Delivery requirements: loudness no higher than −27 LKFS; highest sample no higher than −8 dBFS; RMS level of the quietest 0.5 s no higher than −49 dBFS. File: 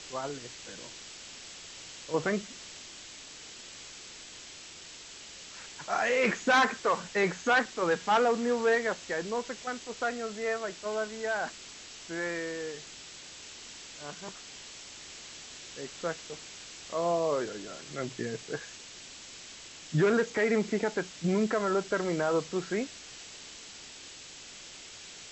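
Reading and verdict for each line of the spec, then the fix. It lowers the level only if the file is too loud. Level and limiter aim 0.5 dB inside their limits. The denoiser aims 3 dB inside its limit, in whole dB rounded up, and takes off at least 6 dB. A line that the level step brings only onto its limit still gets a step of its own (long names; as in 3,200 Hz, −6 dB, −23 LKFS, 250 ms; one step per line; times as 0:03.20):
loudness −30.5 LKFS: in spec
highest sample −15.0 dBFS: in spec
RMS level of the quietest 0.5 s −48 dBFS: out of spec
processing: broadband denoise 6 dB, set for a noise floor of −48 dBFS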